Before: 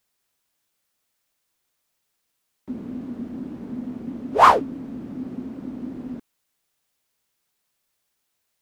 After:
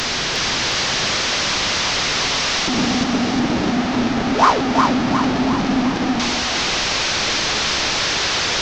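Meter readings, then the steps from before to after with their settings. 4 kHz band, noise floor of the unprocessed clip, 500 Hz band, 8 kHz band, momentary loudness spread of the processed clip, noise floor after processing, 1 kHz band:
+25.5 dB, -76 dBFS, +7.5 dB, n/a, 3 LU, -21 dBFS, +3.5 dB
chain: delta modulation 32 kbps, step -13 dBFS; split-band echo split 470 Hz, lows 99 ms, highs 0.358 s, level -3.5 dB; gain -1.5 dB

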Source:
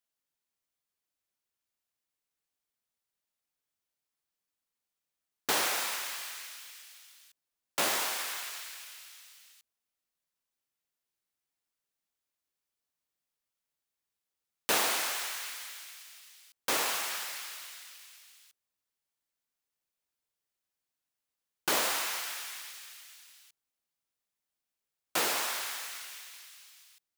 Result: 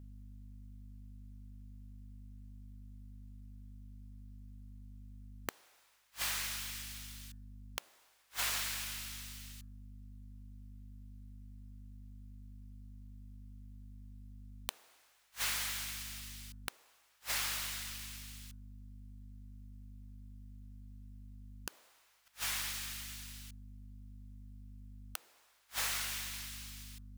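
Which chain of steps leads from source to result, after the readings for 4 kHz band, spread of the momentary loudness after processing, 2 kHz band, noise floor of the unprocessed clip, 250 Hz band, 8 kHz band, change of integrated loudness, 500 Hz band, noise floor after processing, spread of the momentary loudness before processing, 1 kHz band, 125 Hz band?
-5.5 dB, 20 LU, -7.0 dB, under -85 dBFS, -5.0 dB, -5.5 dB, -7.5 dB, -17.0 dB, -69 dBFS, 21 LU, -12.0 dB, +13.0 dB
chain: hum 50 Hz, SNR 17 dB; de-hum 149 Hz, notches 12; flipped gate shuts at -26 dBFS, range -41 dB; gain +5.5 dB

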